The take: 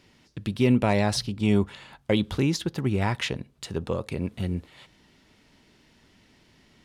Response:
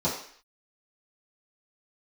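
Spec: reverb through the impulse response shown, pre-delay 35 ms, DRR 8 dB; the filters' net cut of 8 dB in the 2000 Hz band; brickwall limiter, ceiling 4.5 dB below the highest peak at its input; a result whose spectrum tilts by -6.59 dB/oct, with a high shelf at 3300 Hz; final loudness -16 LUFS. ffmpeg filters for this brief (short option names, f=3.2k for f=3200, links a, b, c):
-filter_complex "[0:a]equalizer=f=2k:t=o:g=-7.5,highshelf=f=3.3k:g=-7,alimiter=limit=-16dB:level=0:latency=1,asplit=2[a][b];[1:a]atrim=start_sample=2205,adelay=35[c];[b][c]afir=irnorm=-1:irlink=0,volume=-19dB[d];[a][d]amix=inputs=2:normalize=0,volume=11.5dB"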